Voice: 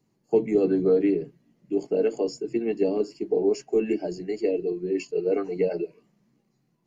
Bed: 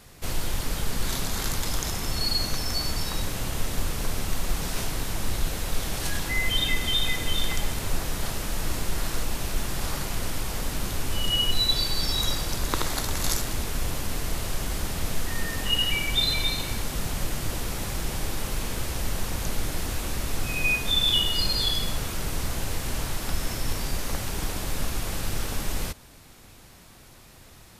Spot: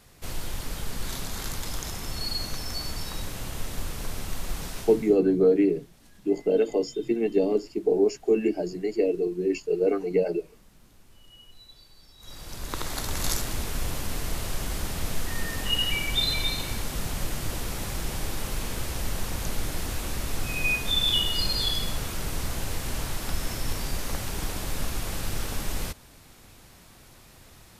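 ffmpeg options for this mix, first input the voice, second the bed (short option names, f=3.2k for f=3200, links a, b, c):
-filter_complex "[0:a]adelay=4550,volume=1dB[a];[1:a]volume=21.5dB,afade=t=out:st=4.63:d=0.55:silence=0.0707946,afade=t=in:st=12.19:d=1.01:silence=0.0473151[b];[a][b]amix=inputs=2:normalize=0"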